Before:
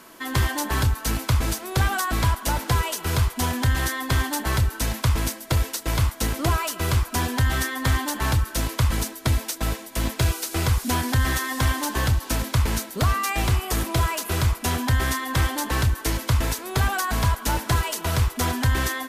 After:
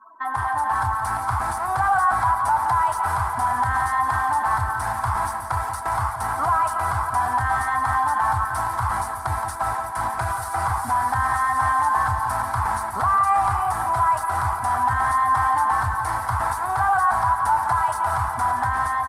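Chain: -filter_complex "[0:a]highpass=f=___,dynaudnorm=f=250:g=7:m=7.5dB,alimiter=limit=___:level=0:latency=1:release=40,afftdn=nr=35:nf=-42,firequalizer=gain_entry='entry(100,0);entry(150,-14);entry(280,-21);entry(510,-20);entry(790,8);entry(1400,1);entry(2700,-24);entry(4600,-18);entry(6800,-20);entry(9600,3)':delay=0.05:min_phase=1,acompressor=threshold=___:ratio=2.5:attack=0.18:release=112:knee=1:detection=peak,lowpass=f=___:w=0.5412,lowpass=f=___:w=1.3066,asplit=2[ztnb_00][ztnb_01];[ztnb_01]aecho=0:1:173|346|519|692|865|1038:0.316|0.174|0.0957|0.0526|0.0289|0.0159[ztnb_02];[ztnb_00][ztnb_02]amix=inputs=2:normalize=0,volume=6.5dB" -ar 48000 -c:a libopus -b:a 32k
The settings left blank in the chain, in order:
190, -10dB, -25dB, 7.7k, 7.7k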